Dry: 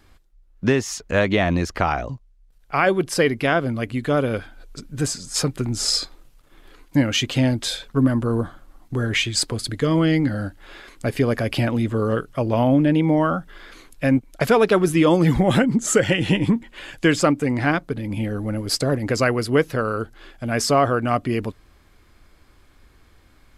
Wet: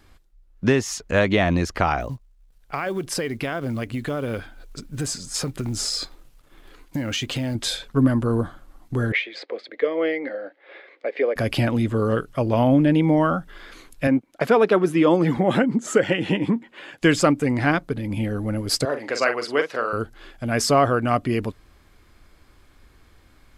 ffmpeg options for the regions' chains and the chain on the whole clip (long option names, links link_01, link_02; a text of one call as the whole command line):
ffmpeg -i in.wav -filter_complex "[0:a]asettb=1/sr,asplit=3[link_01][link_02][link_03];[link_01]atrim=end=2.004[link_04];[link_02]atrim=start=2:end=7.55,asetpts=PTS-STARTPTS,afade=type=in:duration=0.004:curve=qsin,afade=type=out:start_time=5.546:duration=0.004:curve=qsin,acrusher=bits=8:mode=log:mix=0:aa=0.000001,acompressor=threshold=-22dB:ratio=6:attack=3.2:release=140:knee=1:detection=peak[link_05];[link_03]atrim=start=7.546[link_06];[link_04][link_05]acrossfade=duration=0.004:curve1=hsin:curve2=qsin[link_07];[link_07][link_06]acrossfade=duration=0.004:curve1=qsin:curve2=hsin,asettb=1/sr,asplit=3[link_08][link_09][link_10];[link_08]atrim=end=9.124[link_11];[link_09]atrim=start=9.12:end=11.36,asetpts=PTS-STARTPTS,afade=type=in:duration=0.004:curve=qsin,afade=type=out:start_time=2.236:duration=0.004:curve=qsin,highpass=frequency=390:width=0.5412,highpass=frequency=390:width=1.3066,equalizer=frequency=520:width_type=q:width=4:gain=9,equalizer=frequency=980:width_type=q:width=4:gain=-6,equalizer=frequency=1400:width_type=q:width=4:gain=-6,equalizer=frequency=2100:width_type=q:width=4:gain=6,equalizer=frequency=2900:width_type=q:width=4:gain=-7,lowpass=frequency=3200:width=0.5412,lowpass=frequency=3200:width=1.3066,tremolo=f=4.3:d=0.39[link_12];[link_10]atrim=start=11.356[link_13];[link_11][link_12]acrossfade=duration=0.004:curve1=hsin:curve2=qsin[link_14];[link_14][link_13]acrossfade=duration=0.004:curve1=qsin:curve2=hsin,asettb=1/sr,asplit=3[link_15][link_16][link_17];[link_15]atrim=end=14.074[link_18];[link_16]atrim=start=14.07:end=17.02,asetpts=PTS-STARTPTS,afade=type=in:duration=0.004:curve=qsin,afade=type=out:start_time=2.946:duration=0.004:curve=qsin,highpass=200,highshelf=frequency=3900:gain=-12[link_19];[link_17]atrim=start=17.016[link_20];[link_18][link_19]acrossfade=duration=0.004:curve1=hsin:curve2=qsin[link_21];[link_21][link_20]acrossfade=duration=0.004:curve1=qsin:curve2=hsin,asettb=1/sr,asplit=3[link_22][link_23][link_24];[link_22]atrim=end=18.854[link_25];[link_23]atrim=start=18.85:end=19.93,asetpts=PTS-STARTPTS,afade=type=in:duration=0.004:curve=qsin,afade=type=out:start_time=1.076:duration=0.004:curve=qsin,highpass=490,lowpass=6300,asplit=2[link_26][link_27];[link_27]adelay=43,volume=-8dB[link_28];[link_26][link_28]amix=inputs=2:normalize=0,atrim=end_sample=47628[link_29];[link_24]atrim=start=19.926[link_30];[link_25][link_29]acrossfade=duration=0.004:curve1=hsin:curve2=qsin[link_31];[link_31][link_30]acrossfade=duration=0.004:curve1=qsin:curve2=hsin" out.wav